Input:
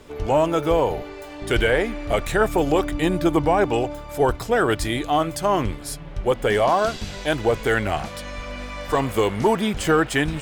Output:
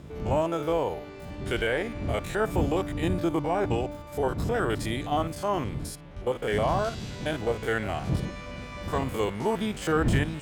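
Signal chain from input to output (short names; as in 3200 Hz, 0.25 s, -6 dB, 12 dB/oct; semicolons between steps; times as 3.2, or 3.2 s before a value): stepped spectrum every 50 ms; wind noise 130 Hz -25 dBFS; HPF 76 Hz 6 dB/oct; gain -6 dB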